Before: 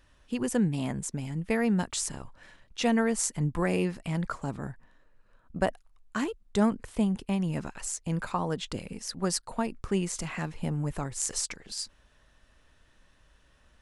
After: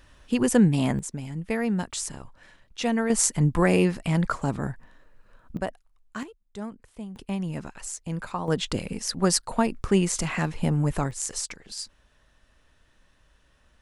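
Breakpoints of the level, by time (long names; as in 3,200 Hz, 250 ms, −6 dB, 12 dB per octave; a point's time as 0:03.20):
+7.5 dB
from 0:00.99 0 dB
from 0:03.10 +7 dB
from 0:05.57 −3.5 dB
from 0:06.23 −11.5 dB
from 0:07.16 −1 dB
from 0:08.48 +7 dB
from 0:11.11 0 dB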